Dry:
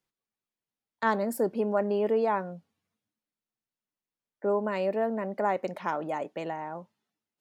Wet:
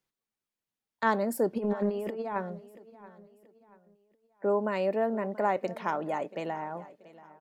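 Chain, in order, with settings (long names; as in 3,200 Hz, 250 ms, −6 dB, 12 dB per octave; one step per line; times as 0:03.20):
0:01.56–0:02.36: compressor whose output falls as the input rises −30 dBFS, ratio −0.5
repeating echo 682 ms, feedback 39%, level −19 dB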